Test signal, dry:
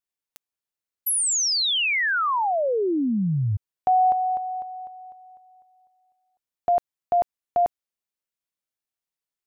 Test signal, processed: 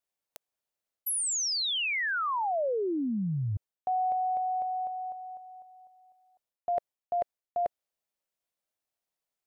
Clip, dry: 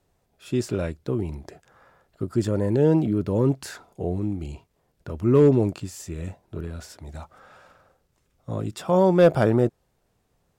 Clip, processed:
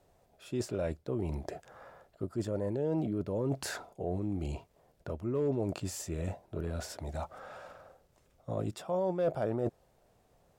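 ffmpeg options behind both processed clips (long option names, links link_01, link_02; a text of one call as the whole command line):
ffmpeg -i in.wav -af "equalizer=frequency=630:width_type=o:width=0.89:gain=8,areverse,acompressor=threshold=-29dB:ratio=5:attack=3.9:release=398:knee=6:detection=peak,areverse" out.wav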